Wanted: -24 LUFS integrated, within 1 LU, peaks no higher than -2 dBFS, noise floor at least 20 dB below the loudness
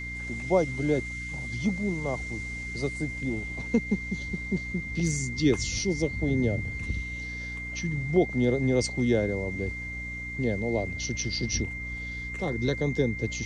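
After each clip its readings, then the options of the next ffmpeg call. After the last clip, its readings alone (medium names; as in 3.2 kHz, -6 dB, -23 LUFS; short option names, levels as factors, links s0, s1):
hum 60 Hz; highest harmonic 300 Hz; hum level -37 dBFS; steady tone 2.1 kHz; tone level -35 dBFS; loudness -29.0 LUFS; peak level -10.5 dBFS; loudness target -24.0 LUFS
-> -af "bandreject=f=60:t=h:w=4,bandreject=f=120:t=h:w=4,bandreject=f=180:t=h:w=4,bandreject=f=240:t=h:w=4,bandreject=f=300:t=h:w=4"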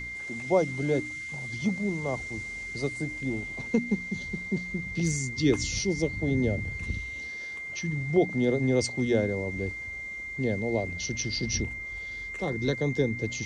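hum not found; steady tone 2.1 kHz; tone level -35 dBFS
-> -af "bandreject=f=2100:w=30"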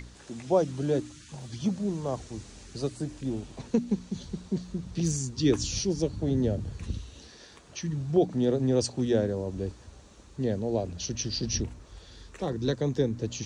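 steady tone not found; loudness -30.0 LUFS; peak level -11.5 dBFS; loudness target -24.0 LUFS
-> -af "volume=2"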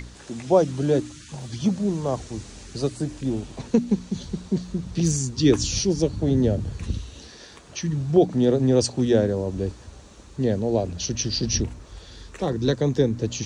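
loudness -24.0 LUFS; peak level -5.5 dBFS; noise floor -46 dBFS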